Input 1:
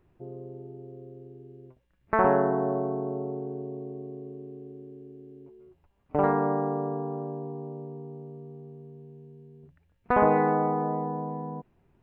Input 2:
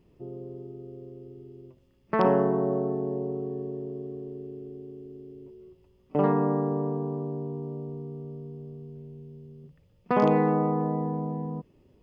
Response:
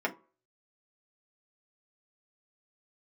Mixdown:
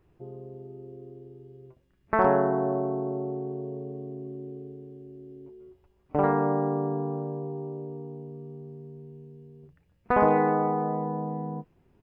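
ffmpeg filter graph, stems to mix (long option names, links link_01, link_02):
-filter_complex "[0:a]volume=0dB[link_01];[1:a]acompressor=threshold=-27dB:ratio=6,flanger=delay=19:depth=5.7:speed=0.17,adelay=8.9,volume=-6dB[link_02];[link_01][link_02]amix=inputs=2:normalize=0"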